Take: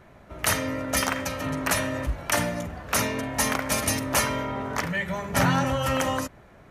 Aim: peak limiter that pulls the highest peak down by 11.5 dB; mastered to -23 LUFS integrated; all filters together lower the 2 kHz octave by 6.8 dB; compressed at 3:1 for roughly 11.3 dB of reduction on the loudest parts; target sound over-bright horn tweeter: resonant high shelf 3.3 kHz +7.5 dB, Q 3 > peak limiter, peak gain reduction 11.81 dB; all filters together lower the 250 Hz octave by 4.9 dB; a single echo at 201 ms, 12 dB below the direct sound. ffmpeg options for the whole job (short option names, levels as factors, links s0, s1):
-af "equalizer=f=250:t=o:g=-6,equalizer=f=2000:t=o:g=-4.5,acompressor=threshold=0.0158:ratio=3,alimiter=level_in=1.88:limit=0.0631:level=0:latency=1,volume=0.531,highshelf=f=3300:t=q:w=3:g=7.5,aecho=1:1:201:0.251,volume=7.08,alimiter=limit=0.2:level=0:latency=1"